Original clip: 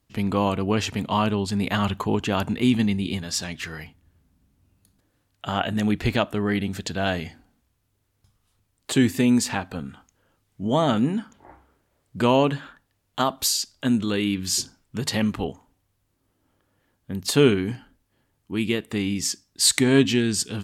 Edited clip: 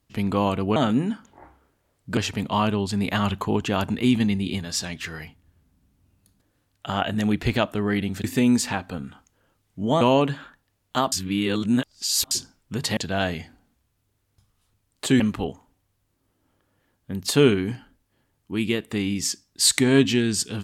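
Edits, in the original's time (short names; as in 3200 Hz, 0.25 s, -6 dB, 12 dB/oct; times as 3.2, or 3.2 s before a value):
6.83–9.06 move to 15.2
10.83–12.24 move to 0.76
13.35–14.54 reverse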